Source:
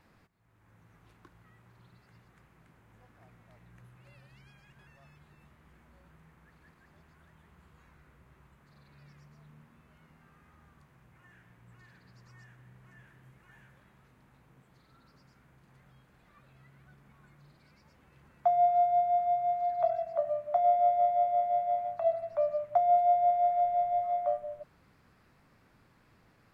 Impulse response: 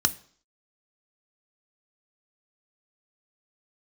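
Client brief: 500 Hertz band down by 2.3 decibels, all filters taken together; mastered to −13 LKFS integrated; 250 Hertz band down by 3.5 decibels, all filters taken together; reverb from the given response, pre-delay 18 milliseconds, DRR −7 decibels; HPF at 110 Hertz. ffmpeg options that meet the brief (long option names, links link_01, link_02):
-filter_complex "[0:a]highpass=110,equalizer=frequency=250:width_type=o:gain=-4,equalizer=frequency=500:width_type=o:gain=-3.5,asplit=2[link_01][link_02];[1:a]atrim=start_sample=2205,adelay=18[link_03];[link_02][link_03]afir=irnorm=-1:irlink=0,volume=-3dB[link_04];[link_01][link_04]amix=inputs=2:normalize=0,volume=9.5dB"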